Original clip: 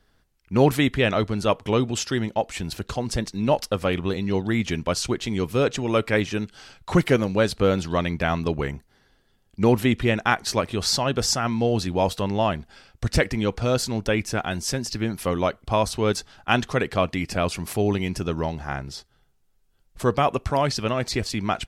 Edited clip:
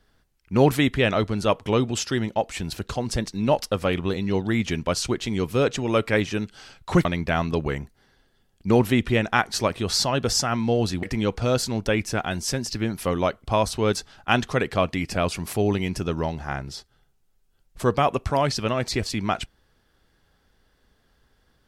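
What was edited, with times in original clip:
7.05–7.98 s: delete
11.96–13.23 s: delete

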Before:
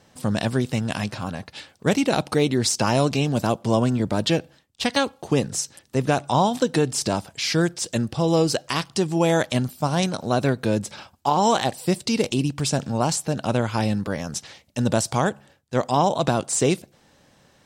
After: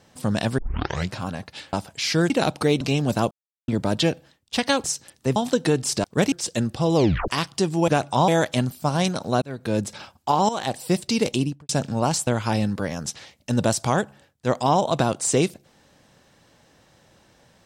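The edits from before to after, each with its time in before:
0.58 s: tape start 0.55 s
1.73–2.01 s: swap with 7.13–7.70 s
2.52–3.08 s: delete
3.58–3.95 s: mute
5.11–5.53 s: delete
6.05–6.45 s: move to 9.26 s
8.34 s: tape stop 0.32 s
10.40–10.78 s: fade in
11.47–11.76 s: fade in, from -14 dB
12.35–12.67 s: studio fade out
13.25–13.55 s: delete

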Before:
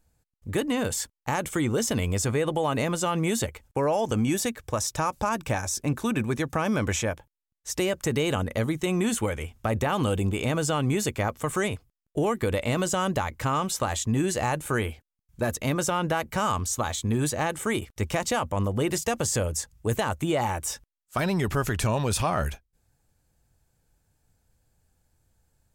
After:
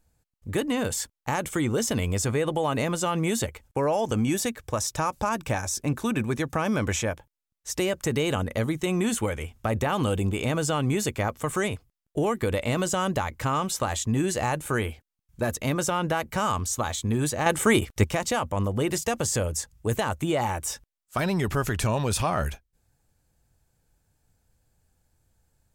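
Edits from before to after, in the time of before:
17.46–18.04 s: gain +7 dB

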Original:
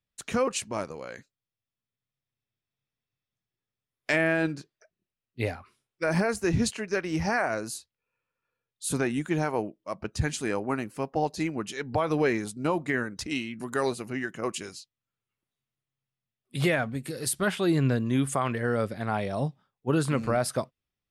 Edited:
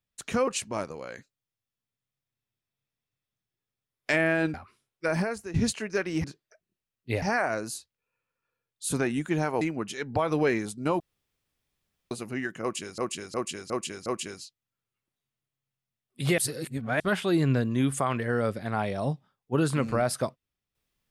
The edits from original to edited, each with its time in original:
4.54–5.52 s: move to 7.22 s
6.04–6.52 s: fade out, to -16 dB
9.61–11.40 s: delete
12.79–13.90 s: room tone
14.41–14.77 s: loop, 5 plays
16.73–17.35 s: reverse

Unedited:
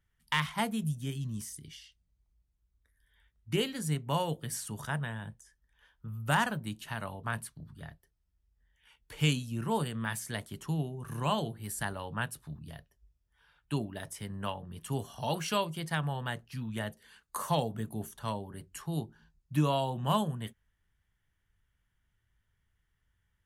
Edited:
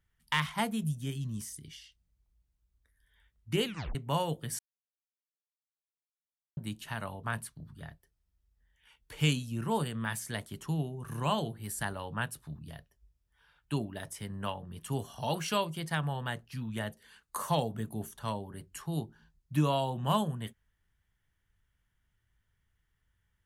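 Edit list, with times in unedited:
3.65 s: tape stop 0.30 s
4.59–6.57 s: mute

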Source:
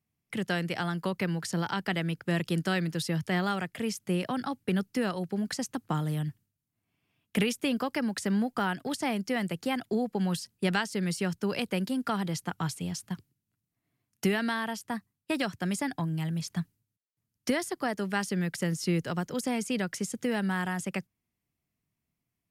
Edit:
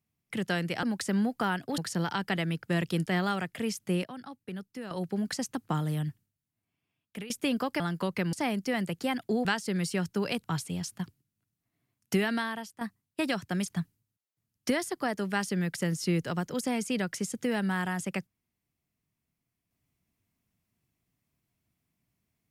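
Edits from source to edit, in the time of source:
0.83–1.36 s: swap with 8.00–8.95 s
2.64–3.26 s: delete
4.24–5.11 s: gain -11 dB
6.26–7.50 s: fade out, to -16.5 dB
10.07–10.72 s: delete
11.71–12.55 s: delete
14.46–14.92 s: fade out, to -11.5 dB
15.77–16.46 s: delete

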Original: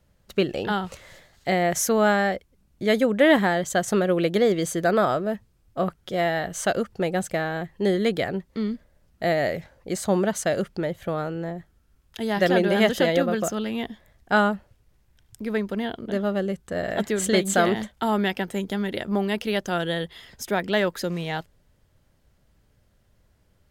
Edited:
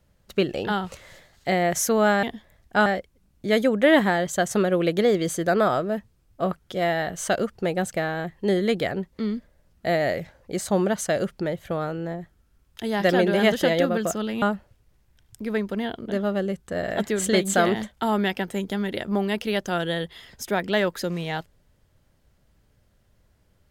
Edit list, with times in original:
13.79–14.42 s: move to 2.23 s

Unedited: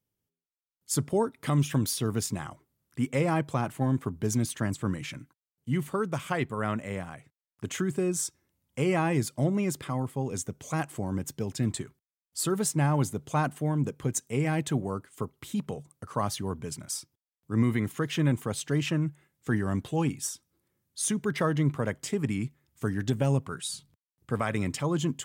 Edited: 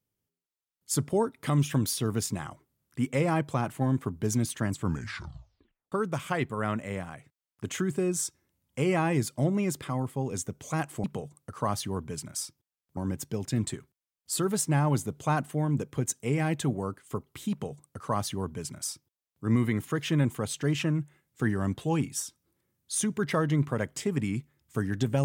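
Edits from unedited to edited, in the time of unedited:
4.78 s: tape stop 1.14 s
15.58–17.51 s: copy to 11.04 s

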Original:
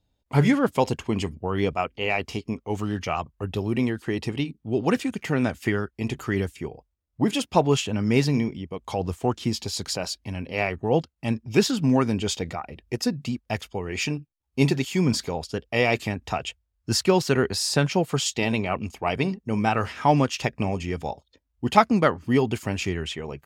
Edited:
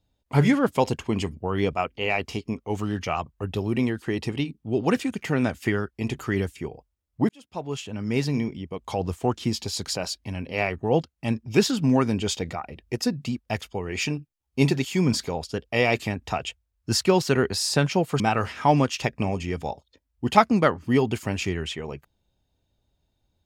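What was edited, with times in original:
7.29–8.71 s: fade in
18.20–19.60 s: delete

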